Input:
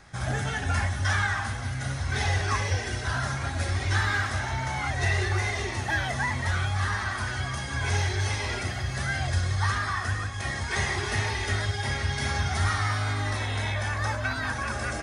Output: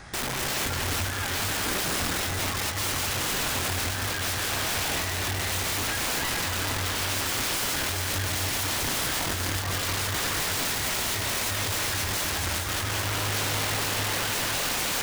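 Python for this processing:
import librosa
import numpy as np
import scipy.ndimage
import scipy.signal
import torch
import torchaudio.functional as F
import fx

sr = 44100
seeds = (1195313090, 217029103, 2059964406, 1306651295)

y = fx.over_compress(x, sr, threshold_db=-32.0, ratio=-1.0)
y = (np.mod(10.0 ** (29.0 / 20.0) * y + 1.0, 2.0) - 1.0) / 10.0 ** (29.0 / 20.0)
y = fx.echo_multitap(y, sr, ms=(252, 429), db=(-7.0, -4.0))
y = y * librosa.db_to_amplitude(4.0)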